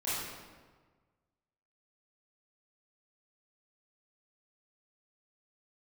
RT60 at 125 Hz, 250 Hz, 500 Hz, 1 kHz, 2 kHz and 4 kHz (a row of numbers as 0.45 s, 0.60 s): 1.8 s, 1.5 s, 1.5 s, 1.4 s, 1.2 s, 0.95 s